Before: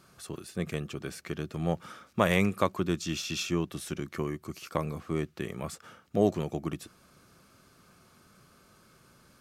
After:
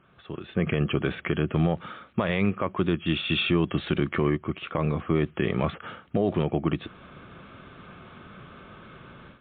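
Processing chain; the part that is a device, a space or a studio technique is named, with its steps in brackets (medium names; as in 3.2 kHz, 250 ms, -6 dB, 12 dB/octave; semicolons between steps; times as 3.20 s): low-bitrate web radio (level rider gain up to 14.5 dB; peak limiter -12.5 dBFS, peak gain reduction 11.5 dB; MP3 40 kbps 8 kHz)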